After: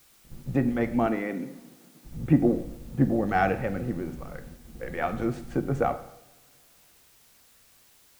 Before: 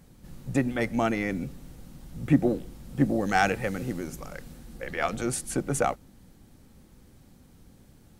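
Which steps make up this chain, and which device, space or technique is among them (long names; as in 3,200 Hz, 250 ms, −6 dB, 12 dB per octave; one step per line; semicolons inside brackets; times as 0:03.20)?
noise gate −43 dBFS, range −22 dB
cassette deck with a dirty head (head-to-tape spacing loss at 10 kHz 34 dB; tape wow and flutter; white noise bed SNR 30 dB)
0:01.06–0:02.05: high-pass filter 200 Hz 24 dB per octave
coupled-rooms reverb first 0.78 s, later 3.2 s, from −26 dB, DRR 9 dB
level +2 dB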